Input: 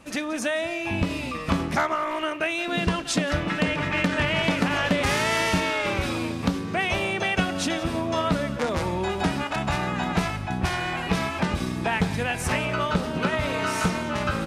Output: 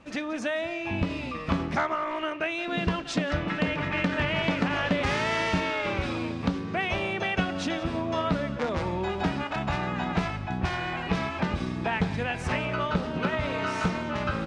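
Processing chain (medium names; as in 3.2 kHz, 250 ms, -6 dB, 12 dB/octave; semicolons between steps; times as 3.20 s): distance through air 110 m; trim -2.5 dB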